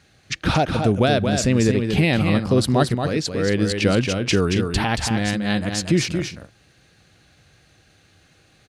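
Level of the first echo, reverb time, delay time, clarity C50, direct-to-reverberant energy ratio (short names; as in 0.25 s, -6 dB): -6.0 dB, none, 0.228 s, none, none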